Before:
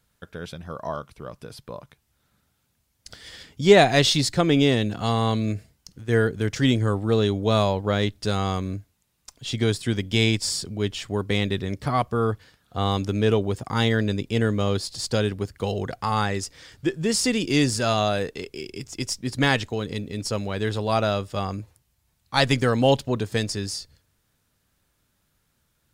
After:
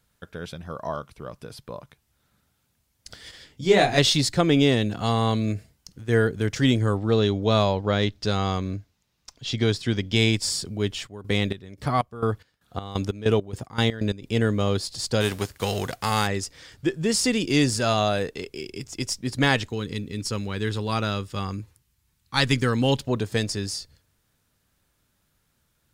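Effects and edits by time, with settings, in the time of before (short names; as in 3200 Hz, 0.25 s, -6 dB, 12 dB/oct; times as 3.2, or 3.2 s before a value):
3.31–3.98 detuned doubles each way 55 cents
6.97–10.16 resonant high shelf 7100 Hz -7 dB, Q 1.5
11.06–14.24 chopper 1.6 Hz -> 4.9 Hz
15.2–16.26 spectral whitening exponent 0.6
19.68–23 bell 650 Hz -11.5 dB 0.62 oct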